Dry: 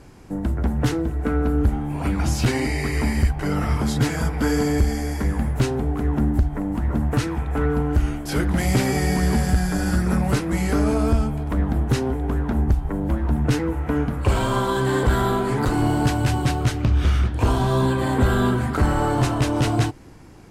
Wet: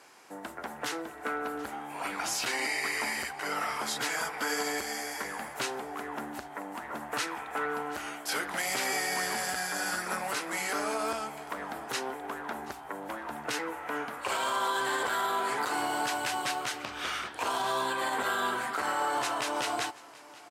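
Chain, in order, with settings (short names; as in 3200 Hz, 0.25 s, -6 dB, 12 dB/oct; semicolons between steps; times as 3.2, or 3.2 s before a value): HPF 800 Hz 12 dB/oct; limiter -21 dBFS, peak gain reduction 6 dB; on a send: echo 0.731 s -20.5 dB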